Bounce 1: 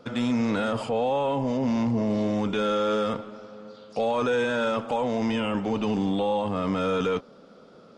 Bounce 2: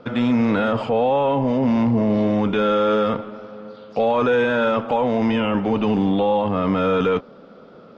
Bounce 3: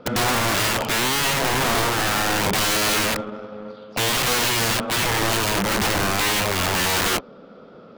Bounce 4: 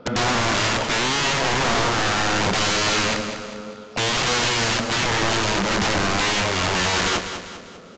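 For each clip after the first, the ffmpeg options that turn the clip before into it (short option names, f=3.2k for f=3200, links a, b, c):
-af "lowpass=3.1k,volume=6.5dB"
-filter_complex "[0:a]asplit=2[a][b];[b]acrusher=bits=4:mix=0:aa=0.5,volume=-10dB[c];[a][c]amix=inputs=2:normalize=0,aeval=exprs='(mod(6.31*val(0)+1,2)-1)/6.31':c=same"
-filter_complex "[0:a]asplit=2[a][b];[b]aecho=0:1:199|398|597|796|995:0.335|0.154|0.0709|0.0326|0.015[c];[a][c]amix=inputs=2:normalize=0,aresample=16000,aresample=44100"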